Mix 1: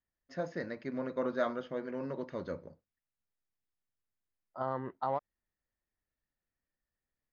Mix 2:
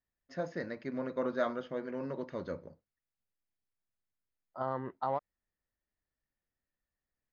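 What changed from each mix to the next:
no change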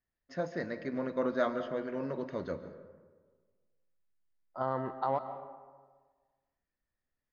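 reverb: on, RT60 1.5 s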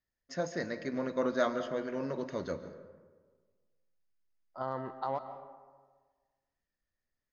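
second voice -4.0 dB; master: remove distance through air 180 m

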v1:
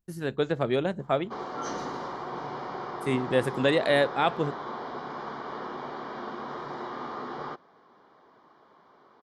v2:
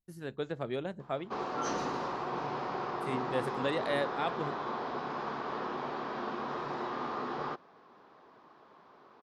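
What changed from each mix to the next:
speech -9.5 dB; background: remove Butterworth band-stop 2.6 kHz, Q 6.8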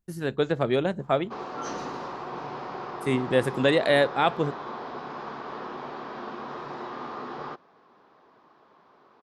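speech +11.5 dB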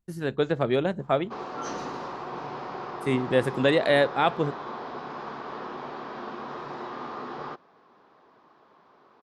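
speech: add treble shelf 6.7 kHz -5 dB

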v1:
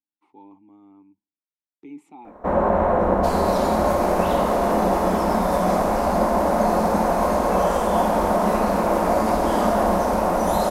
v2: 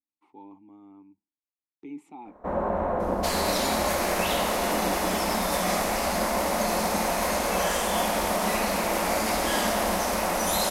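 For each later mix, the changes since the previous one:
first sound -8.0 dB; second sound +7.5 dB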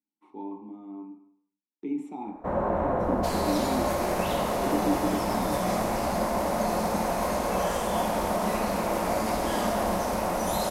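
speech: send on; second sound -7.5 dB; master: add peaking EQ 120 Hz +12.5 dB 0.35 oct

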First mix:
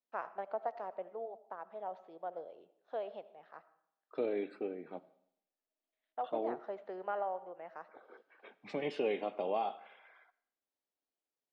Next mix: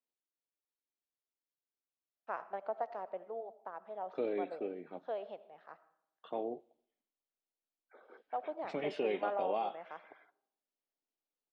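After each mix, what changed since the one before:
first voice: entry +2.15 s; second voice: send -10.5 dB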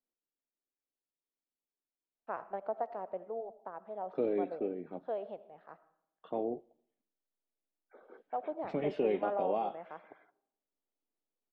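master: add tilt EQ -3 dB/octave

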